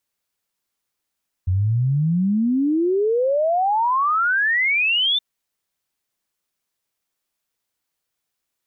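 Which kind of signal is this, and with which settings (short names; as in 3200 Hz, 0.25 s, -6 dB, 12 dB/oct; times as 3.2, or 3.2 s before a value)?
log sweep 88 Hz -> 3600 Hz 3.72 s -16 dBFS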